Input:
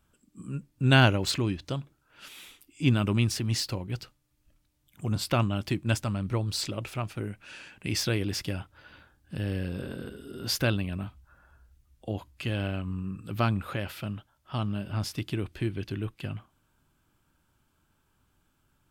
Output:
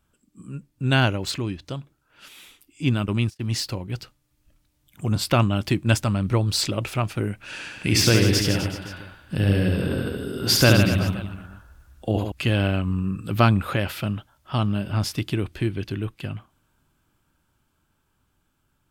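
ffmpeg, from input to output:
ffmpeg -i in.wav -filter_complex "[0:a]asplit=3[link_01][link_02][link_03];[link_01]afade=type=out:start_time=2.93:duration=0.02[link_04];[link_02]agate=range=-38dB:threshold=-29dB:ratio=16:release=100:detection=peak,afade=type=in:start_time=2.93:duration=0.02,afade=type=out:start_time=3.39:duration=0.02[link_05];[link_03]afade=type=in:start_time=3.39:duration=0.02[link_06];[link_04][link_05][link_06]amix=inputs=3:normalize=0,asettb=1/sr,asplit=3[link_07][link_08][link_09];[link_07]atrim=end=7.364[link_10];[link_08]atrim=start=7.36:end=12.32,asetpts=PTS-STARTPTS,afade=type=in:duration=0.004:curve=qsin,afade=type=out:start_time=4.956:duration=0.004:curve=qsin,aecho=1:1:70|154|254.8|375.8|520.9:0.631|0.398|0.251|0.158|0.1,atrim=end_sample=218736[link_11];[link_09]atrim=start=12.316[link_12];[link_10][link_11]acrossfade=duration=0.004:curve1=hsin:curve2=qsin[link_13];[link_13][link_12]acrossfade=duration=0.004:curve1=qsin:curve2=hsin,dynaudnorm=framelen=510:gausssize=17:maxgain=10dB" out.wav

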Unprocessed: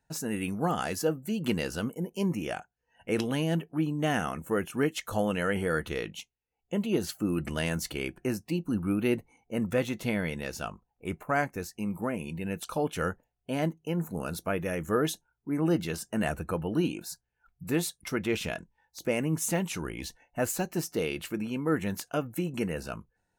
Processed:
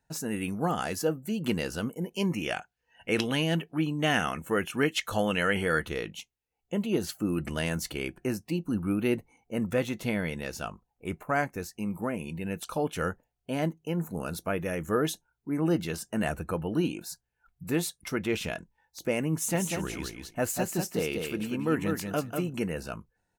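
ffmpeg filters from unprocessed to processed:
ffmpeg -i in.wav -filter_complex "[0:a]asettb=1/sr,asplit=3[link_01][link_02][link_03];[link_01]atrim=end=2.014[link_04];[link_02]atrim=start=2.01:end=5.85,asetpts=PTS-STARTPTS,afade=type=in:duration=0.004:curve=qsin,afade=type=out:start_time=3.836:duration=0.004:curve=qsin,equalizer=frequency=2900:width=0.61:gain=7.5[link_05];[link_03]atrim=start=5.846[link_06];[link_04][link_05]acrossfade=duration=0.004:curve1=hsin:curve2=qsin[link_07];[link_07][link_06]acrossfade=duration=0.004:curve1=qsin:curve2=hsin,asplit=3[link_08][link_09][link_10];[link_08]afade=type=out:start_time=19.53:duration=0.02[link_11];[link_09]aecho=1:1:193|386|579:0.562|0.0956|0.0163,afade=type=in:start_time=19.53:duration=0.02,afade=type=out:start_time=22.51:duration=0.02[link_12];[link_10]afade=type=in:start_time=22.51:duration=0.02[link_13];[link_11][link_12][link_13]amix=inputs=3:normalize=0" out.wav

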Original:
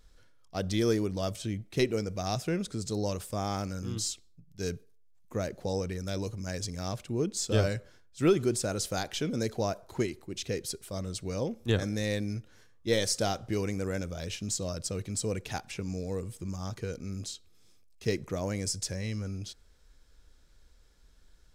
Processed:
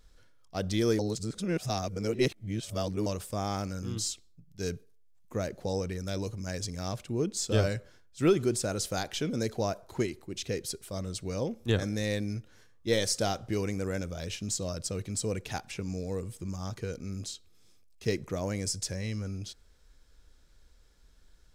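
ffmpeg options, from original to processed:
ffmpeg -i in.wav -filter_complex "[0:a]asplit=3[link_01][link_02][link_03];[link_01]atrim=end=0.992[link_04];[link_02]atrim=start=0.988:end=3.062,asetpts=PTS-STARTPTS,areverse[link_05];[link_03]atrim=start=3.058[link_06];[link_04][link_05]acrossfade=duration=0.004:curve1=hsin:curve2=hsin[link_07];[link_07][link_06]acrossfade=duration=0.004:curve1=hsin:curve2=hsin" out.wav

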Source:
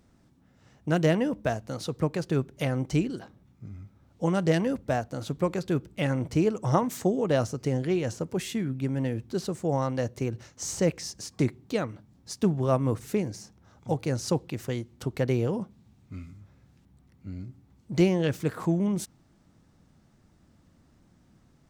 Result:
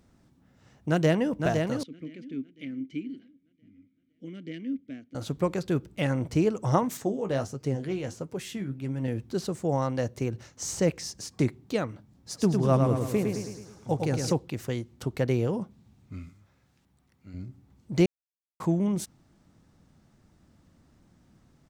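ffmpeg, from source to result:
ffmpeg -i in.wav -filter_complex "[0:a]asplit=2[link_01][link_02];[link_02]afade=type=in:start_time=0.88:duration=0.01,afade=type=out:start_time=1.32:duration=0.01,aecho=0:1:510|1020|1530|2040|2550|3060:0.562341|0.253054|0.113874|0.0512434|0.0230595|0.0103768[link_03];[link_01][link_03]amix=inputs=2:normalize=0,asettb=1/sr,asplit=3[link_04][link_05][link_06];[link_04]atrim=end=1.834[link_07];[link_05]atrim=start=1.83:end=5.15,asetpts=PTS-STARTPTS,afade=type=in:duration=0.004:curve=qsin,afade=type=out:start_time=3.316:duration=0.004:curve=qsin,asplit=3[link_08][link_09][link_10];[link_08]bandpass=frequency=270:width_type=q:width=8,volume=0dB[link_11];[link_09]bandpass=frequency=2290:width_type=q:width=8,volume=-6dB[link_12];[link_10]bandpass=frequency=3010:width_type=q:width=8,volume=-9dB[link_13];[link_11][link_12][link_13]amix=inputs=3:normalize=0[link_14];[link_06]atrim=start=5.146[link_15];[link_07][link_14]acrossfade=duration=0.004:curve1=hsin:curve2=qsin[link_16];[link_16][link_15]acrossfade=duration=0.004:curve1=qsin:curve2=hsin,asettb=1/sr,asplit=3[link_17][link_18][link_19];[link_17]atrim=end=6.974[link_20];[link_18]atrim=start=6.97:end=9.08,asetpts=PTS-STARTPTS,afade=type=in:duration=0.004:curve=qsin,afade=type=out:start_time=2.106:duration=0.004:curve=qsin,flanger=delay=6.4:depth=9.1:regen=48:speed=1.5:shape=sinusoidal[link_21];[link_19]atrim=start=9.076[link_22];[link_20][link_21]acrossfade=duration=0.004:curve1=hsin:curve2=qsin[link_23];[link_23][link_22]acrossfade=duration=0.004:curve1=qsin:curve2=hsin,asplit=3[link_24][link_25][link_26];[link_24]afade=type=out:start_time=12.32:duration=0.02[link_27];[link_25]aecho=1:1:107|214|321|428|535|642|749:0.596|0.31|0.161|0.0838|0.0436|0.0226|0.0118,afade=type=in:start_time=12.32:duration=0.02,afade=type=out:start_time=14.31:duration=0.02[link_28];[link_26]afade=type=in:start_time=14.31:duration=0.02[link_29];[link_27][link_28][link_29]amix=inputs=3:normalize=0,asettb=1/sr,asplit=3[link_30][link_31][link_32];[link_30]atrim=end=16.294[link_33];[link_31]atrim=start=16.29:end=17.34,asetpts=PTS-STARTPTS,afade=type=in:duration=0.004:curve=qsin,afade=type=out:start_time=1.046:duration=0.004:curve=qsin,lowshelf=frequency=410:gain=-10[link_34];[link_32]atrim=start=17.336[link_35];[link_33][link_34]acrossfade=duration=0.004:curve1=hsin:curve2=qsin[link_36];[link_36][link_35]acrossfade=duration=0.004:curve1=qsin:curve2=hsin,asplit=3[link_37][link_38][link_39];[link_37]atrim=end=18.06,asetpts=PTS-STARTPTS,afade=type=out:start_time=18.056:duration=0.004:curve=hsin[link_40];[link_38]atrim=start=18.06:end=18.6,asetpts=PTS-STARTPTS,volume=0[link_41];[link_39]atrim=start=18.6,asetpts=PTS-STARTPTS,afade=type=in:duration=0.004:curve=hsin[link_42];[link_40][link_41][link_42]concat=n=3:v=0:a=1" out.wav

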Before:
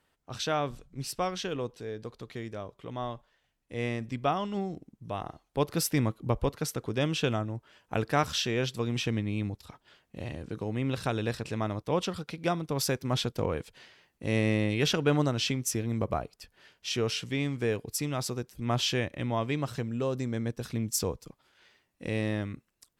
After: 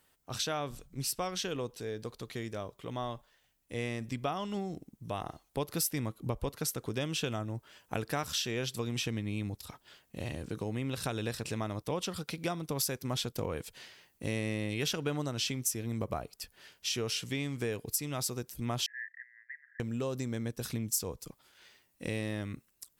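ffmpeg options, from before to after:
ffmpeg -i in.wav -filter_complex "[0:a]asettb=1/sr,asplit=3[link_01][link_02][link_03];[link_01]atrim=end=18.864[link_04];[link_02]atrim=start=18.86:end=19.8,asetpts=PTS-STARTPTS,afade=type=in:duration=0.004:curve=qsin,afade=type=out:start_time=0.936:duration=0.004:curve=qsin,asuperpass=centerf=1800:order=8:qfactor=4.9[link_05];[link_03]atrim=start=19.796[link_06];[link_04][link_05]acrossfade=duration=0.004:curve1=hsin:curve2=qsin[link_07];[link_07][link_06]acrossfade=duration=0.004:curve1=qsin:curve2=hsin,aemphasis=mode=production:type=50kf,acompressor=threshold=-32dB:ratio=3" out.wav

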